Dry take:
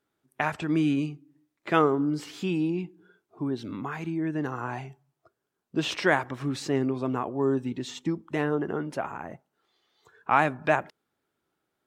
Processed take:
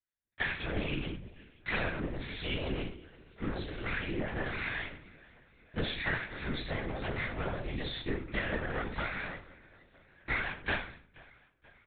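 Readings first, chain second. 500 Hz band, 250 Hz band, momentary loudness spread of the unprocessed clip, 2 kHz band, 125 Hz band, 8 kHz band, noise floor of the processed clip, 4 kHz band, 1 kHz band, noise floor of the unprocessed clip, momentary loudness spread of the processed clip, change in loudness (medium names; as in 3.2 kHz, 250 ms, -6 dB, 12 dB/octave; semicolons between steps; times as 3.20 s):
-10.5 dB, -12.0 dB, 12 LU, -2.0 dB, -5.5 dB, under -35 dB, -67 dBFS, -1.0 dB, -12.5 dB, -82 dBFS, 12 LU, -8.0 dB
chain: comb filter that takes the minimum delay 0.52 ms; gate -56 dBFS, range -23 dB; tilt shelf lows -9 dB, about 1.1 kHz; compression 5:1, threshold -34 dBFS, peak gain reduction 15 dB; on a send: feedback delay 480 ms, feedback 59%, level -23 dB; on the sum: simulated room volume 38 m³, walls mixed, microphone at 1.9 m; LPC vocoder at 8 kHz whisper; trim -8 dB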